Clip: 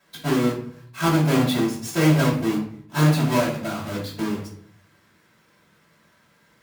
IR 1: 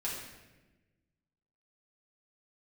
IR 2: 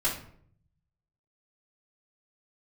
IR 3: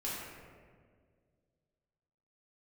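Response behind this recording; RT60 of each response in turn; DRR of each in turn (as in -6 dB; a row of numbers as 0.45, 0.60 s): 2; 1.1, 0.60, 1.9 s; -6.5, -9.0, -8.0 dB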